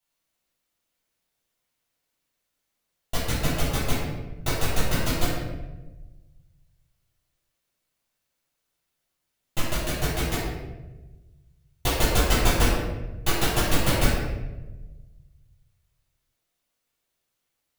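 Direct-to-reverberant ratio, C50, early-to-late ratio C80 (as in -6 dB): -9.5 dB, -0.5 dB, 2.5 dB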